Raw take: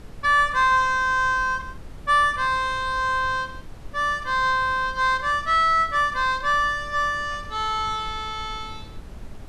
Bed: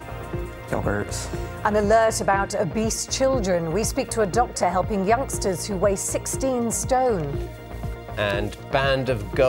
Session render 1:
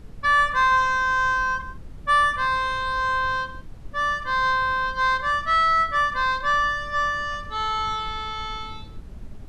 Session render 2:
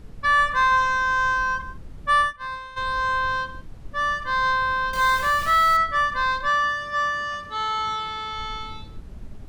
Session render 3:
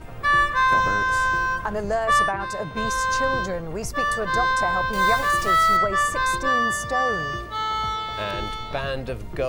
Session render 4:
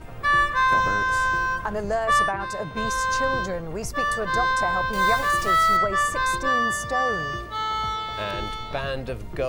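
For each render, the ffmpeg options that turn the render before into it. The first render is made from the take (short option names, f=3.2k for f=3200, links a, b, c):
-af "afftdn=nr=7:nf=-39"
-filter_complex "[0:a]asplit=3[a][b][c];[a]afade=t=out:st=2.21:d=0.02[d];[b]agate=range=-33dB:threshold=-16dB:ratio=3:release=100:detection=peak,afade=t=in:st=2.21:d=0.02,afade=t=out:st=2.76:d=0.02[e];[c]afade=t=in:st=2.76:d=0.02[f];[d][e][f]amix=inputs=3:normalize=0,asettb=1/sr,asplit=3[g][h][i];[g]atrim=end=4.934[j];[h]atrim=start=4.93:end=5.77,asetpts=PTS-STARTPTS,afade=t=in:d=0.004:c=qsin,afade=t=out:st=0.836:d=0.004:c=qsin,aeval=exprs='val(0)+0.5*0.0447*sgn(val(0))':c=same[k];[i]atrim=start=5.766[l];[j][k]acrossfade=d=0.004:c1=hsin:c2=qsin[m];[m][l]acrossfade=d=0.004:c1=qsin:c2=hsin,asettb=1/sr,asplit=3[n][o][p];[n]atrim=end=6.484[q];[o]atrim=start=6.48:end=8.33,asetpts=PTS-STARTPTS,afade=t=in:d=0.004:c=qsin,afade=t=out:st=1.846:d=0.004:c=qsin,highpass=f=150:p=1[r];[p]atrim=start=8.326[s];[q][r]acrossfade=d=0.004:c1=hsin:c2=qsin[t];[t][s]acrossfade=d=0.004:c1=qsin:c2=hsin"
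-filter_complex "[1:a]volume=-7dB[a];[0:a][a]amix=inputs=2:normalize=0"
-af "volume=-1dB"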